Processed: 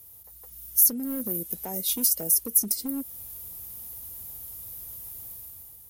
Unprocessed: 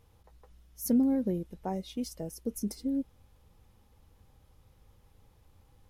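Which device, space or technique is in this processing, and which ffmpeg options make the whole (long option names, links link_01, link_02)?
FM broadcast chain: -filter_complex "[0:a]highpass=40,dynaudnorm=framelen=170:gausssize=7:maxgain=9dB,acrossover=split=170|6600[link_01][link_02][link_03];[link_01]acompressor=threshold=-47dB:ratio=4[link_04];[link_02]acompressor=threshold=-25dB:ratio=4[link_05];[link_03]acompressor=threshold=-45dB:ratio=4[link_06];[link_04][link_05][link_06]amix=inputs=3:normalize=0,aemphasis=mode=production:type=50fm,alimiter=limit=-22dB:level=0:latency=1:release=340,asoftclip=type=hard:threshold=-26dB,lowpass=frequency=15000:width=0.5412,lowpass=frequency=15000:width=1.3066,aemphasis=mode=production:type=50fm,highshelf=frequency=11000:gain=8.5,volume=-1.5dB"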